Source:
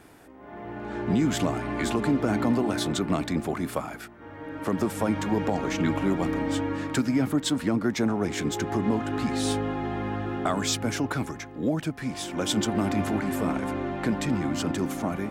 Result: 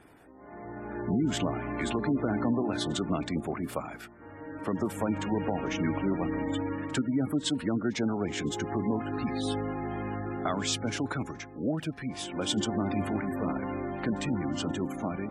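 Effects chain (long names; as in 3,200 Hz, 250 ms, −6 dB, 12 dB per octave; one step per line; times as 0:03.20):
gate on every frequency bin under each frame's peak −25 dB strong
echo ahead of the sound 51 ms −23 dB
dynamic equaliser 2,900 Hz, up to +5 dB, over −51 dBFS, Q 2.9
level −4 dB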